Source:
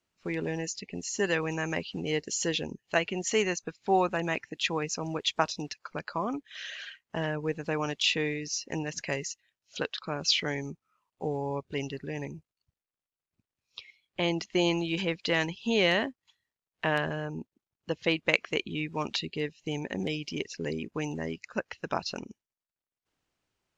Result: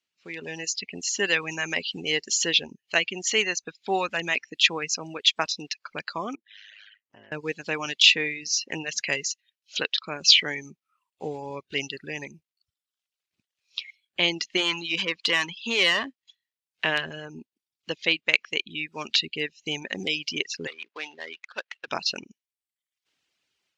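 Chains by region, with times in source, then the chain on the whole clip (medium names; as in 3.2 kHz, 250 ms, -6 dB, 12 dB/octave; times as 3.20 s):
6.35–7.32 s: low-pass 1.6 kHz 6 dB/octave + ring modulator 52 Hz + compression 2.5:1, threshold -57 dBFS
14.57–16.05 s: peaking EQ 1.1 kHz +13.5 dB 0.41 oct + valve stage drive 20 dB, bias 0.45
20.67–21.88 s: dead-time distortion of 0.12 ms + high-pass 630 Hz + distance through air 200 m
whole clip: reverb removal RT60 0.72 s; level rider gain up to 10 dB; frequency weighting D; trim -9.5 dB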